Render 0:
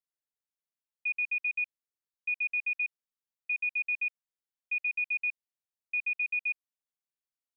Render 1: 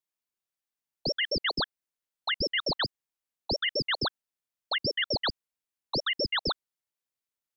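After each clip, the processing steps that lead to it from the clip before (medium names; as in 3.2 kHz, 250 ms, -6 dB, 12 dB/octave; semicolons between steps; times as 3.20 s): ring modulator with a swept carrier 1.7 kHz, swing 80%, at 4.5 Hz; trim +5 dB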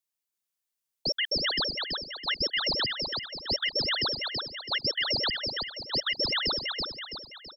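treble shelf 3.1 kHz +8.5 dB; on a send: feedback delay 330 ms, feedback 46%, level -4 dB; on the sum: trim -3.5 dB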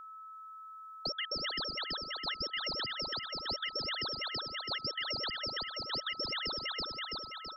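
compression 5:1, threshold -35 dBFS, peak gain reduction 10 dB; whistle 1.3 kHz -46 dBFS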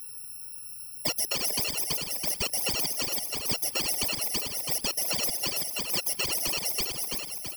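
bit-reversed sample order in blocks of 32 samples; whisper effect; trim +8 dB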